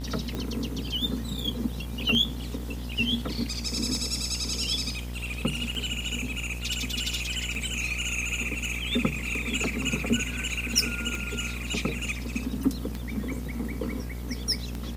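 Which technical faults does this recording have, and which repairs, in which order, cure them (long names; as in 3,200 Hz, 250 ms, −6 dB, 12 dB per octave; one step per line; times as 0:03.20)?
mains buzz 60 Hz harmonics 34 −35 dBFS
scratch tick 33 1/3 rpm −19 dBFS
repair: click removal
hum removal 60 Hz, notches 34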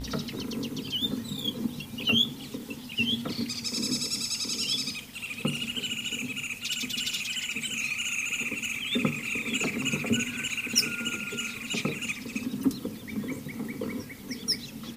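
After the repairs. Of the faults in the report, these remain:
none of them is left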